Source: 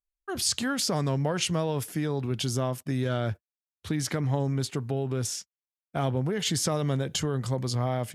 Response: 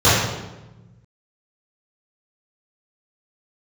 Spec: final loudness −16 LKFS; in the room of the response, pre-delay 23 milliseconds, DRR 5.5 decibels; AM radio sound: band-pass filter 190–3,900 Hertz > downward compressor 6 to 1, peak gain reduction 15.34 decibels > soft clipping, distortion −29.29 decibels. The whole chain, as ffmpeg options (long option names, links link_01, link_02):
-filter_complex "[0:a]asplit=2[link_01][link_02];[1:a]atrim=start_sample=2205,adelay=23[link_03];[link_02][link_03]afir=irnorm=-1:irlink=0,volume=-31.5dB[link_04];[link_01][link_04]amix=inputs=2:normalize=0,highpass=190,lowpass=3900,acompressor=threshold=-38dB:ratio=6,asoftclip=threshold=-26dB,volume=25.5dB"